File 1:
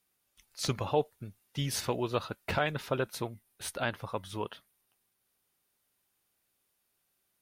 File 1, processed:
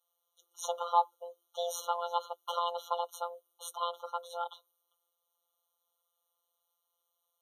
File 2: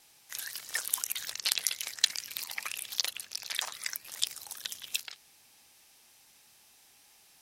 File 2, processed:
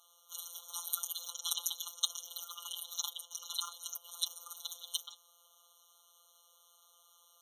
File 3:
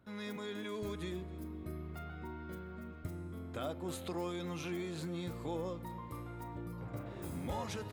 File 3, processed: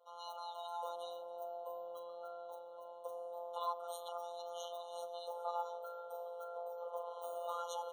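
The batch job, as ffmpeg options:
ffmpeg -i in.wav -filter_complex "[0:a]equalizer=frequency=600:width=1.3:gain=3.5,acrossover=split=130|2700[link_01][link_02][link_03];[link_01]alimiter=level_in=19dB:limit=-24dB:level=0:latency=1:release=75,volume=-19dB[link_04];[link_04][link_02][link_03]amix=inputs=3:normalize=0,afreqshift=400,afftfilt=real='hypot(re,im)*cos(PI*b)':imag='0':win_size=1024:overlap=0.75,afftfilt=real='re*eq(mod(floor(b*sr/1024/1400),2),0)':imag='im*eq(mod(floor(b*sr/1024/1400),2),0)':win_size=1024:overlap=0.75,volume=1dB" out.wav

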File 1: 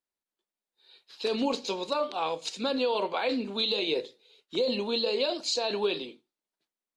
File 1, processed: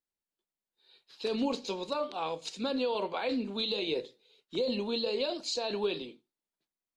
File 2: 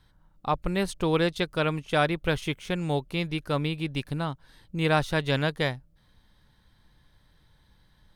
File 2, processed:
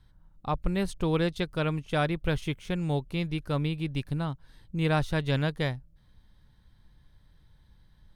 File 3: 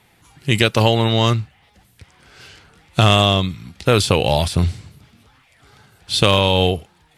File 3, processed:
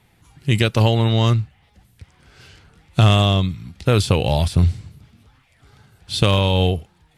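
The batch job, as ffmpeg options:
ffmpeg -i in.wav -af "lowshelf=frequency=200:gain=9.5,volume=-5dB" out.wav

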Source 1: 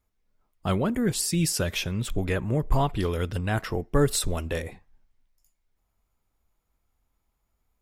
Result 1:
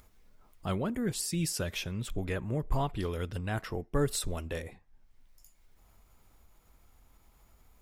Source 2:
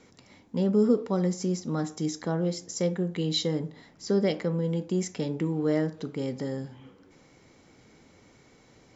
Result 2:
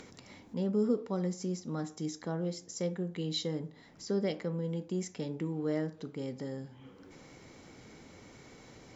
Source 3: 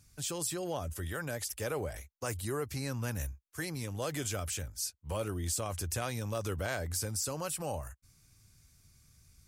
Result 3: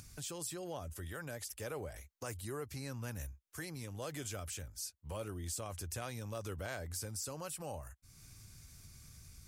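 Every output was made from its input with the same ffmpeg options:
ffmpeg -i in.wav -af "acompressor=mode=upward:threshold=-35dB:ratio=2.5,volume=-7dB" out.wav

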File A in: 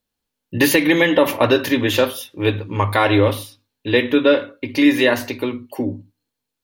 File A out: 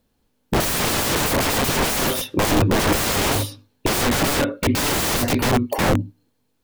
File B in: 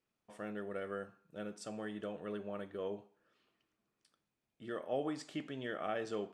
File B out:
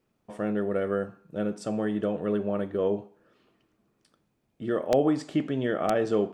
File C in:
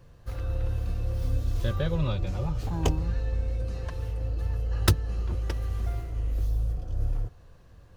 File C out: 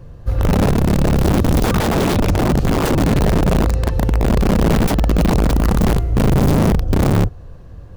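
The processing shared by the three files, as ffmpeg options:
ffmpeg -i in.wav -af "acontrast=89,aeval=exprs='(mod(7.08*val(0)+1,2)-1)/7.08':channel_layout=same,tiltshelf=frequency=970:gain=5.5,volume=3.5dB" out.wav

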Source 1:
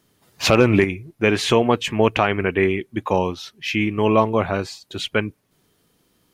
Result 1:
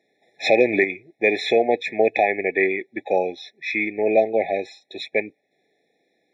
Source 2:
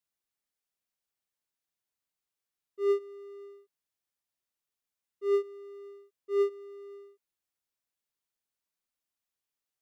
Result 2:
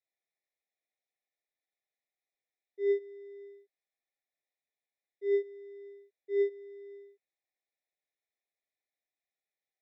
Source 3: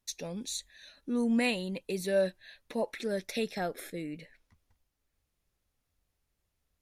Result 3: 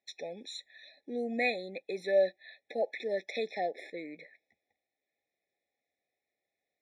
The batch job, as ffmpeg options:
ffmpeg -i in.wav -af "highpass=510,lowpass=3000,afftfilt=real='re*eq(mod(floor(b*sr/1024/850),2),0)':imag='im*eq(mod(floor(b*sr/1024/850),2),0)':win_size=1024:overlap=0.75,volume=4dB" out.wav

